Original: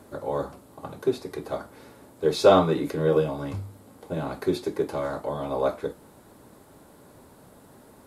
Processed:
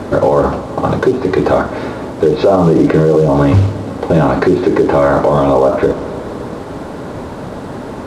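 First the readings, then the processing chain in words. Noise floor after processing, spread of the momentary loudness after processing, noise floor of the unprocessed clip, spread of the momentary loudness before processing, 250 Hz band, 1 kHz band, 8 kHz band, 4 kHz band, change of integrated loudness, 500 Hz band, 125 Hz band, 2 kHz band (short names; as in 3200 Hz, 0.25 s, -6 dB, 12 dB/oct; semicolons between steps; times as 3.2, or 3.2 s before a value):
-26 dBFS, 16 LU, -53 dBFS, 17 LU, +17.0 dB, +14.0 dB, n/a, +5.5 dB, +13.5 dB, +13.5 dB, +18.5 dB, +16.0 dB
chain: treble ducked by the level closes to 1000 Hz, closed at -19.5 dBFS; bell 9000 Hz -8 dB 2.4 oct; compressor 8:1, threshold -25 dBFS, peak gain reduction 13.5 dB; companded quantiser 6-bit; air absorption 76 m; Schroeder reverb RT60 3.3 s, combs from 29 ms, DRR 18 dB; maximiser +28 dB; gain -1 dB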